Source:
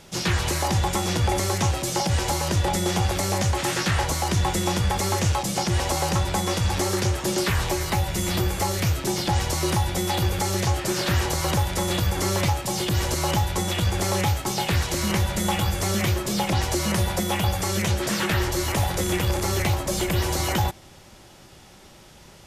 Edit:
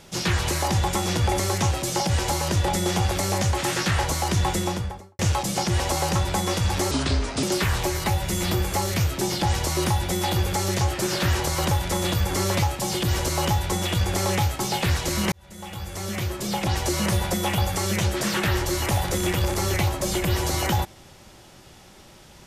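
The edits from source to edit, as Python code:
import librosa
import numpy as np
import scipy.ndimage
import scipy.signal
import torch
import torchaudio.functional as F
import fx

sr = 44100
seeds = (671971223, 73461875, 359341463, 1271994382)

y = fx.studio_fade_out(x, sr, start_s=4.5, length_s=0.69)
y = fx.edit(y, sr, fx.speed_span(start_s=6.91, length_s=0.38, speed=0.73),
    fx.fade_in_span(start_s=15.18, length_s=1.6), tone=tone)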